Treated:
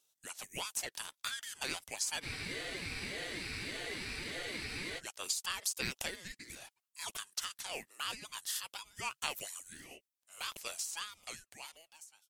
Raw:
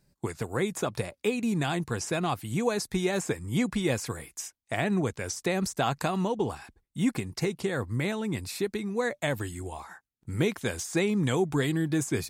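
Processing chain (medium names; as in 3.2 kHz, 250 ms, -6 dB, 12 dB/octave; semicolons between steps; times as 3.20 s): fade out at the end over 2.30 s; Bessel high-pass 1.7 kHz, order 8; treble shelf 6.3 kHz +5.5 dB; spectral freeze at 2.25 s, 2.73 s; ring modulator with a swept carrier 940 Hz, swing 25%, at 1.7 Hz; trim +1 dB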